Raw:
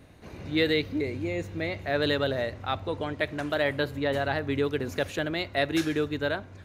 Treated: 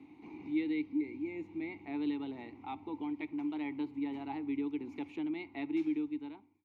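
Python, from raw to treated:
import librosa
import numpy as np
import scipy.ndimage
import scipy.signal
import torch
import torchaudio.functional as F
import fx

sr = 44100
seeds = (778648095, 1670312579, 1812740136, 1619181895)

y = fx.fade_out_tail(x, sr, length_s=0.76)
y = fx.vowel_filter(y, sr, vowel='u')
y = fx.band_squash(y, sr, depth_pct=40)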